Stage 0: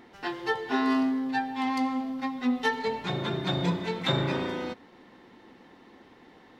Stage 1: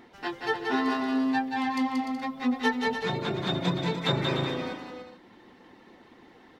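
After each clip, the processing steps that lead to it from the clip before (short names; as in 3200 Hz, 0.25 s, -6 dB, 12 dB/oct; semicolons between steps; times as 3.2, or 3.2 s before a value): reverb removal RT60 0.71 s; on a send: bouncing-ball echo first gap 0.18 s, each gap 0.65×, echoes 5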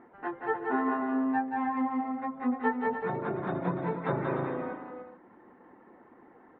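LPF 1600 Hz 24 dB/oct; low shelf 150 Hz -10.5 dB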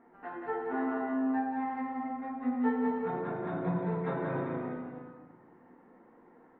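shoebox room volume 510 m³, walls mixed, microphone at 1.7 m; gain -8 dB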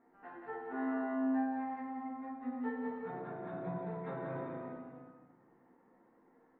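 resonator 66 Hz, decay 0.63 s, harmonics all, mix 70%; gain -1 dB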